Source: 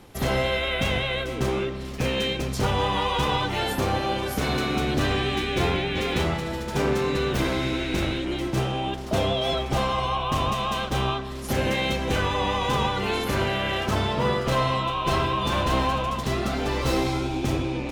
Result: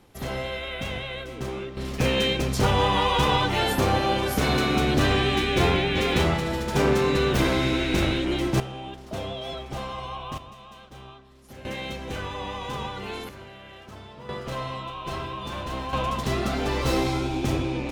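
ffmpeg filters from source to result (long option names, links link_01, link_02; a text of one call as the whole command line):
ffmpeg -i in.wav -af "asetnsamples=nb_out_samples=441:pad=0,asendcmd='1.77 volume volume 2.5dB;8.6 volume volume -9dB;10.38 volume volume -19.5dB;11.65 volume volume -8.5dB;13.29 volume volume -19dB;14.29 volume volume -9dB;15.93 volume volume 0dB',volume=-7dB" out.wav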